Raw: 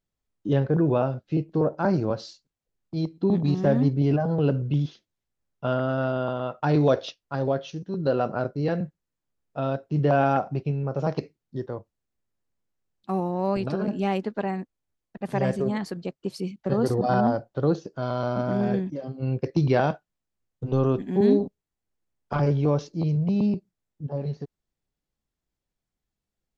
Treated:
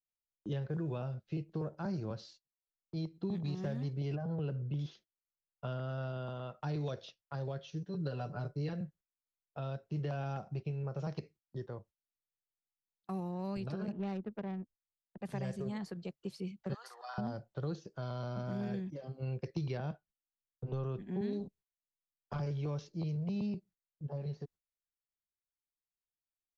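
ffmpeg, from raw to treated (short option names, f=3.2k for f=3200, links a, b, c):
-filter_complex "[0:a]asettb=1/sr,asplit=3[a][b][c];[a]atrim=end=4.154[d];[b]atrim=start=4.15:end=4.79,asetpts=PTS-STARTPTS,afade=t=in:d=0.004:c=qsin,afade=t=out:st=0.636:d=0.004:c=qsin,highshelf=f=2.4k:g=-11.5[e];[c]atrim=start=4.786[f];[d][e]acrossfade=d=0.004:c1=hsin:c2=qsin[g];[g][f]acrossfade=d=0.004:c1=qsin:c2=hsin,asettb=1/sr,asplit=3[h][i][j];[h]atrim=end=7.714[k];[i]atrim=start=7.71:end=8.73,asetpts=PTS-STARTPTS,afade=t=in:d=0.004:c=qsin,afade=t=out:st=1.016:d=0.004:c=qsin,aecho=1:1:6.9:0.75,atrim=end_sample=44982[l];[j]atrim=start=8.726[m];[k][l]acrossfade=d=0.004:c1=hsin:c2=qsin[n];[n][m]acrossfade=d=0.004:c1=qsin:c2=hsin,asettb=1/sr,asplit=3[o][p][q];[o]atrim=end=13.924[r];[p]atrim=start=13.92:end=15.22,asetpts=PTS-STARTPTS,afade=t=in:d=0.004:c=qsin,afade=t=out:st=1.296:d=0.004:c=qsin,adynamicsmooth=sensitivity=1:basefreq=540[s];[q]atrim=start=15.216[t];[r][s]acrossfade=d=0.004:c1=hsin:c2=qsin[u];[u][t]acrossfade=d=0.004:c1=qsin:c2=hsin,asettb=1/sr,asplit=3[v][w][x];[v]atrim=end=16.744[y];[w]atrim=start=16.74:end=17.18,asetpts=PTS-STARTPTS,afade=t=in:d=0.004:c=qsin,afade=t=out:st=0.436:d=0.004:c=qsin,highpass=f=990:w=0.5412,highpass=f=990:w=1.3066[z];[x]atrim=start=17.176[aa];[y][z]acrossfade=d=0.004:c1=hsin:c2=qsin[ab];[ab][aa]acrossfade=d=0.004:c1=qsin:c2=hsin,asettb=1/sr,asplit=3[ac][ad][ae];[ac]atrim=end=19.774[af];[ad]atrim=start=19.77:end=21.33,asetpts=PTS-STARTPTS,afade=t=in:d=0.004:c=qsin,afade=t=out:st=1.556:d=0.004:c=qsin,aemphasis=mode=reproduction:type=75kf[ag];[ae]atrim=start=21.326[ah];[af][ag]acrossfade=d=0.004:c1=hsin:c2=qsin[ai];[ai][ah]acrossfade=d=0.004:c1=qsin:c2=hsin,agate=range=-17dB:threshold=-48dB:ratio=16:detection=peak,equalizer=f=270:t=o:w=0.22:g=-12.5,acrossover=split=270|1500|3700[aj][ak][al][am];[aj]acompressor=threshold=-29dB:ratio=4[an];[ak]acompressor=threshold=-38dB:ratio=4[ao];[al]acompressor=threshold=-49dB:ratio=4[ap];[am]acompressor=threshold=-51dB:ratio=4[aq];[an][ao][ap][aq]amix=inputs=4:normalize=0,volume=-7dB"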